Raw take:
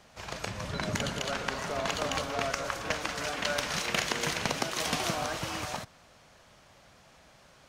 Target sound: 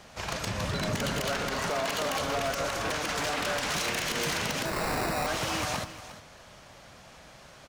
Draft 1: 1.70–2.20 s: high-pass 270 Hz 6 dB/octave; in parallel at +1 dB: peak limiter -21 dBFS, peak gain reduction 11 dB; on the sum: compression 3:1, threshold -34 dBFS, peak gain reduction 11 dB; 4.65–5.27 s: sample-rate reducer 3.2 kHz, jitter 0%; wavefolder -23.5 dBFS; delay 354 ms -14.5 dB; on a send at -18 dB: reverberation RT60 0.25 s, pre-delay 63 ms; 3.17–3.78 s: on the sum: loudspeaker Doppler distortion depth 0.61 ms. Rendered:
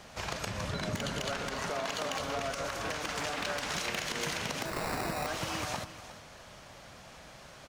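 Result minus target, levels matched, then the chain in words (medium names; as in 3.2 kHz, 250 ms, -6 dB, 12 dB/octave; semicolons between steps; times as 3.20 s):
compression: peak gain reduction +6 dB
1.70–2.20 s: high-pass 270 Hz 6 dB/octave; in parallel at +1 dB: peak limiter -21 dBFS, peak gain reduction 11 dB; on the sum: compression 3:1, threshold -25 dBFS, peak gain reduction 5 dB; 4.65–5.27 s: sample-rate reducer 3.2 kHz, jitter 0%; wavefolder -23.5 dBFS; delay 354 ms -14.5 dB; on a send at -18 dB: reverberation RT60 0.25 s, pre-delay 63 ms; 3.17–3.78 s: on the sum: loudspeaker Doppler distortion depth 0.61 ms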